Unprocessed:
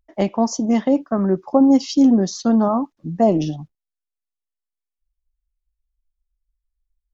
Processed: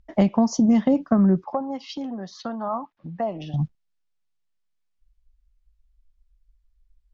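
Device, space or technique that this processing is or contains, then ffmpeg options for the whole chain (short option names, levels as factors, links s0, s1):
jukebox: -filter_complex "[0:a]lowpass=5900,lowshelf=f=250:t=q:w=1.5:g=6,acompressor=threshold=0.0631:ratio=4,asettb=1/sr,asplit=3[s0][s1][s2];[s0]atrim=end=1.444[s3];[s1]atrim=start=1.44:end=3.54,asetpts=PTS-STARTPTS,afade=t=in:d=0.004:c=qsin,afade=t=out:st=2.096:d=0.004:c=qsin,acrossover=split=560 3600:gain=0.126 1 0.1[s4][s5][s6];[s4][s5][s6]amix=inputs=3:normalize=0[s7];[s2]atrim=start=3.536[s8];[s3][s7]acrossfade=d=0.004:c1=hsin:c2=qsin[s9];[s9][s8]acrossfade=d=0.004:c1=qsin:c2=hsin,volume=2.24"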